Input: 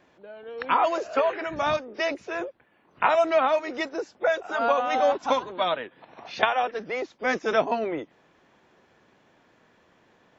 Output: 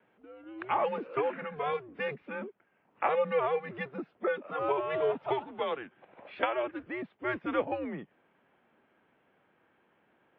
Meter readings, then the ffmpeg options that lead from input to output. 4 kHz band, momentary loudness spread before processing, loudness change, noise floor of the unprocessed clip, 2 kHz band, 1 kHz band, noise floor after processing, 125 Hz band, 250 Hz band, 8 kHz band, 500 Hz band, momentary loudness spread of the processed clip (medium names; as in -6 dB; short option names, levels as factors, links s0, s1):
-12.5 dB, 11 LU, -7.5 dB, -63 dBFS, -8.5 dB, -9.0 dB, -71 dBFS, 0.0 dB, -4.5 dB, no reading, -6.5 dB, 12 LU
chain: -af "highpass=210,highpass=f=300:t=q:w=0.5412,highpass=f=300:t=q:w=1.307,lowpass=f=3200:t=q:w=0.5176,lowpass=f=3200:t=q:w=0.7071,lowpass=f=3200:t=q:w=1.932,afreqshift=-140,volume=0.447"